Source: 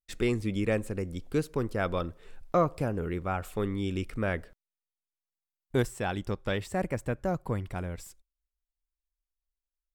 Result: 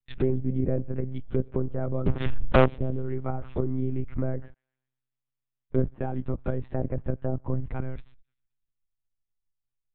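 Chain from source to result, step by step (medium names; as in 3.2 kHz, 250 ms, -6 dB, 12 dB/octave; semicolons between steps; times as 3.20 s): low-pass that closes with the level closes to 650 Hz, closed at -26 dBFS; bass shelf 180 Hz +9 dB; 2.07–2.65 s: waveshaping leveller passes 5; feedback echo behind a high-pass 130 ms, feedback 50%, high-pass 3 kHz, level -21.5 dB; monotone LPC vocoder at 8 kHz 130 Hz; loudspeaker Doppler distortion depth 0.19 ms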